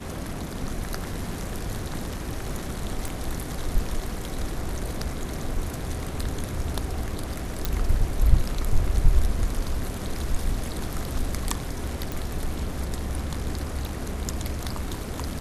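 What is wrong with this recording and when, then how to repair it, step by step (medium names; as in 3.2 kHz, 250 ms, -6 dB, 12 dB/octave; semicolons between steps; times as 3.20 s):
3.08 s: pop
7.65 s: pop
12.12 s: pop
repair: de-click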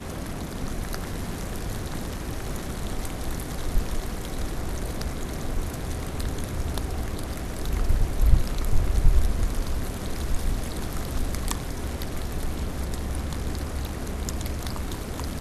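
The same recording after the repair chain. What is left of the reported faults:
3.08 s: pop
12.12 s: pop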